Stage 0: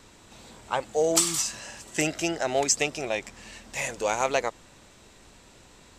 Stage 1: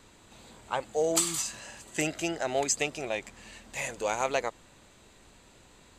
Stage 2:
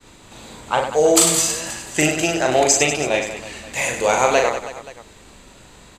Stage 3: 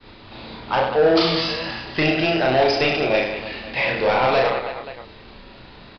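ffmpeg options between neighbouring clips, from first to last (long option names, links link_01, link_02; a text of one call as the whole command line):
ffmpeg -i in.wav -af "bandreject=frequency=5500:width=6.5,volume=-3.5dB" out.wav
ffmpeg -i in.wav -af "acontrast=67,agate=range=-33dB:threshold=-47dB:ratio=3:detection=peak,aecho=1:1:40|100|190|325|527.5:0.631|0.398|0.251|0.158|0.1,volume=4.5dB" out.wav
ffmpeg -i in.wav -filter_complex "[0:a]aresample=11025,asoftclip=type=tanh:threshold=-15.5dB,aresample=44100,asplit=2[link_01][link_02];[link_02]adelay=31,volume=-5dB[link_03];[link_01][link_03]amix=inputs=2:normalize=0,volume=2dB" out.wav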